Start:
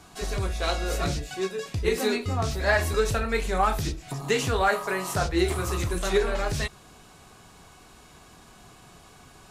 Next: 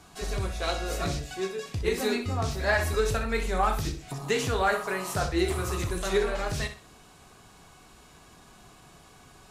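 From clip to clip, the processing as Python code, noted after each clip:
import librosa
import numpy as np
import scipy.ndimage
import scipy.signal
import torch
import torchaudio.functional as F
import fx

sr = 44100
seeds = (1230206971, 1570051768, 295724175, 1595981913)

y = fx.room_flutter(x, sr, wall_m=10.7, rt60_s=0.35)
y = y * 10.0 ** (-2.5 / 20.0)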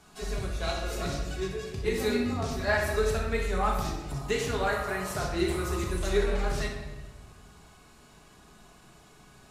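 y = fx.room_shoebox(x, sr, seeds[0], volume_m3=1000.0, walls='mixed', distance_m=1.4)
y = y * 10.0 ** (-4.5 / 20.0)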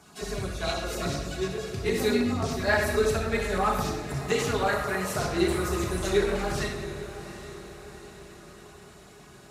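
y = fx.filter_lfo_notch(x, sr, shape='saw_down', hz=9.5, low_hz=380.0, high_hz=4200.0, q=2.2)
y = scipy.signal.sosfilt(scipy.signal.butter(2, 77.0, 'highpass', fs=sr, output='sos'), y)
y = fx.echo_diffused(y, sr, ms=779, feedback_pct=51, wet_db=-13.0)
y = y * 10.0 ** (3.5 / 20.0)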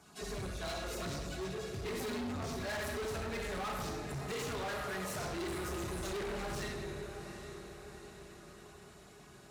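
y = np.clip(10.0 ** (30.5 / 20.0) * x, -1.0, 1.0) / 10.0 ** (30.5 / 20.0)
y = y * 10.0 ** (-6.0 / 20.0)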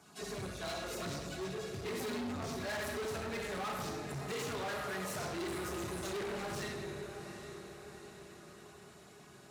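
y = scipy.signal.sosfilt(scipy.signal.butter(2, 93.0, 'highpass', fs=sr, output='sos'), x)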